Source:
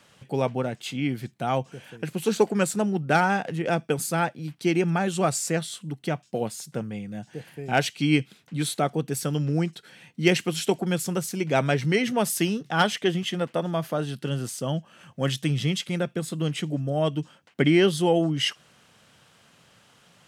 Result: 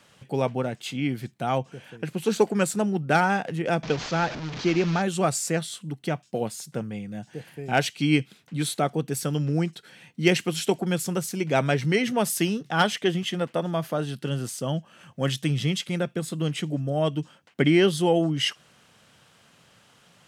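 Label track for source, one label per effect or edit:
1.580000	2.300000	high-shelf EQ 6,500 Hz −6 dB
3.830000	5.020000	linear delta modulator 32 kbit/s, step −28.5 dBFS

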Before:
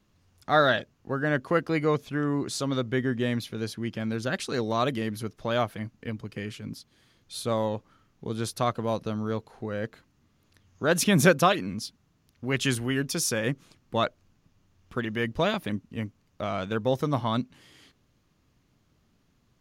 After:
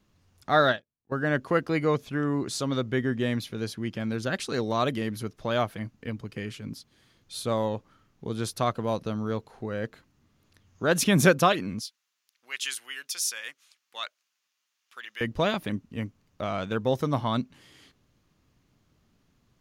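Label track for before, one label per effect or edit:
0.690000	1.120000	expander for the loud parts 2.5 to 1, over −40 dBFS
11.810000	15.210000	Bessel high-pass filter 2,300 Hz

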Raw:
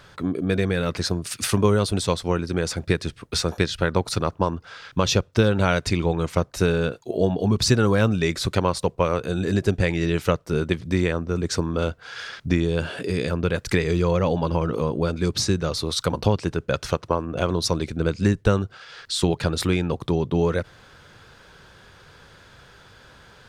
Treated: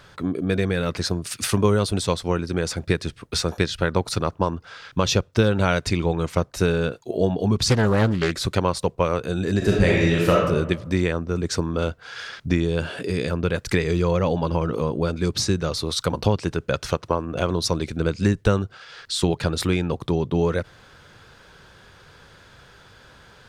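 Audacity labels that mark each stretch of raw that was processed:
7.560000	8.340000	highs frequency-modulated by the lows depth 0.9 ms
9.570000	10.440000	thrown reverb, RT60 1 s, DRR −3.5 dB
15.400000	18.550000	one half of a high-frequency compander encoder only

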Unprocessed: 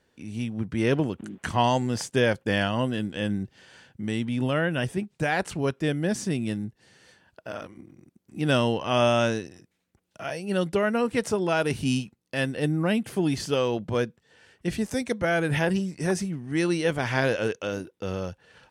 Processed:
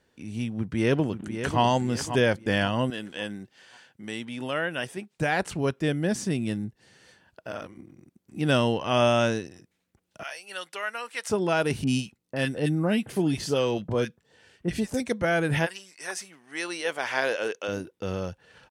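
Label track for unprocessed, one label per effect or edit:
0.560000	1.610000	delay throw 540 ms, feedback 40%, level −9 dB
2.900000	5.180000	high-pass filter 580 Hz 6 dB per octave
10.230000	11.300000	high-pass filter 1,200 Hz
11.840000	15.000000	multiband delay without the direct sound lows, highs 30 ms, split 1,400 Hz
15.650000	17.670000	high-pass filter 1,300 Hz → 360 Hz

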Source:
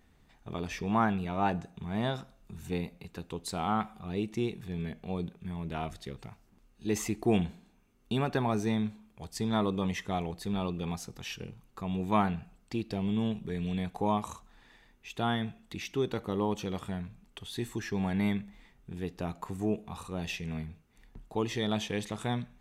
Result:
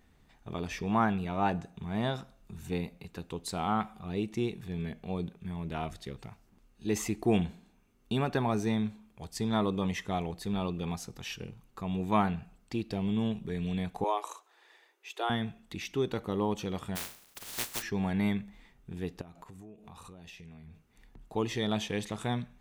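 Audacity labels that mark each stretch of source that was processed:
14.040000	15.300000	Butterworth high-pass 330 Hz 72 dB per octave
16.950000	17.810000	compressing power law on the bin magnitudes exponent 0.12
19.210000	21.250000	downward compressor 16 to 1, threshold −45 dBFS

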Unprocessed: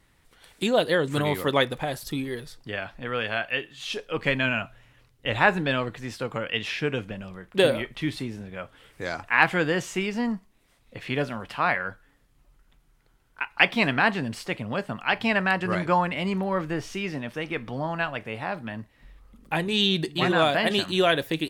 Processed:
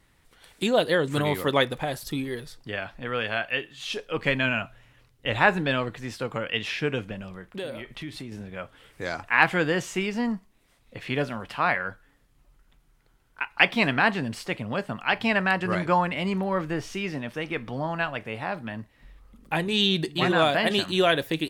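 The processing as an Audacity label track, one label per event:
7.420000	8.320000	downward compressor 3 to 1, threshold −35 dBFS

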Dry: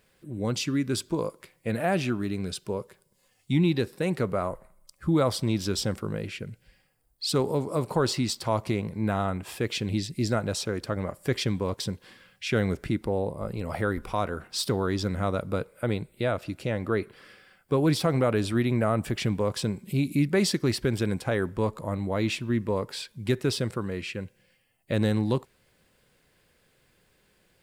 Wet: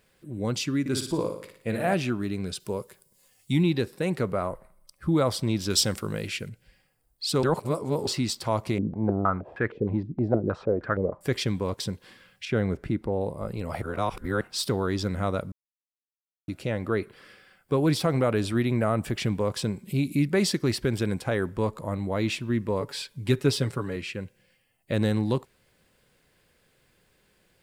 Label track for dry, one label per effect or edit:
0.800000	1.940000	flutter between parallel walls apart 9.9 metres, dies away in 0.56 s
2.600000	3.630000	high-shelf EQ 6,300 Hz +11 dB
4.320000	5.120000	notch filter 7,100 Hz, Q 6.3
5.700000	6.490000	high-shelf EQ 2,200 Hz +10 dB
7.430000	8.070000	reverse
8.780000	11.210000	low-pass on a step sequencer 6.4 Hz 280–1,600 Hz
12.450000	13.210000	high-shelf EQ 2,500 Hz −11 dB
13.820000	14.410000	reverse
15.520000	16.480000	silence
22.800000	23.960000	comb filter 7.1 ms

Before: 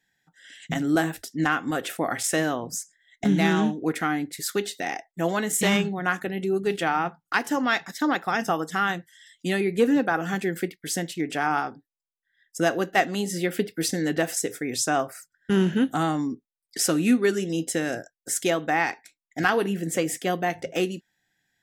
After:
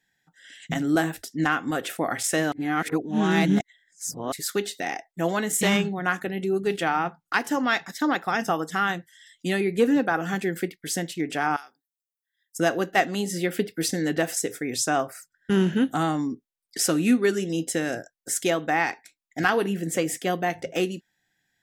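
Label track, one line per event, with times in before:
2.520000	4.320000	reverse
11.560000	12.590000	first difference

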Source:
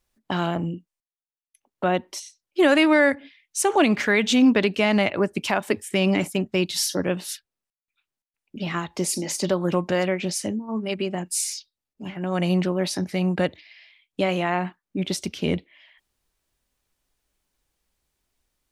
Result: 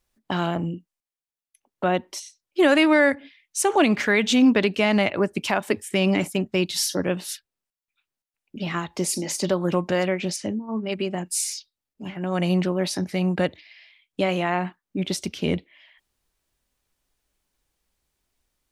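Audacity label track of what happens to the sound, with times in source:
10.360000	10.920000	high-frequency loss of the air 95 metres

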